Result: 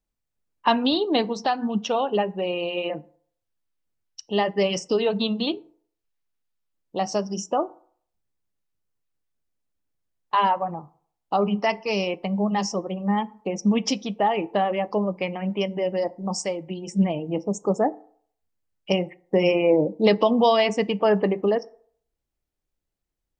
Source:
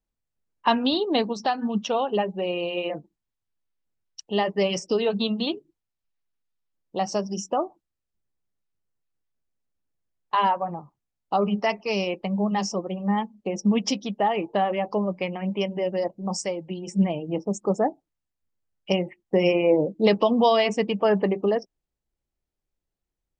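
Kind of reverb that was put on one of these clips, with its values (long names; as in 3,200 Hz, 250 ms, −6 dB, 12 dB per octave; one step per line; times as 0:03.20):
feedback delay network reverb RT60 0.57 s, low-frequency decay 0.8×, high-frequency decay 0.5×, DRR 17 dB
level +1 dB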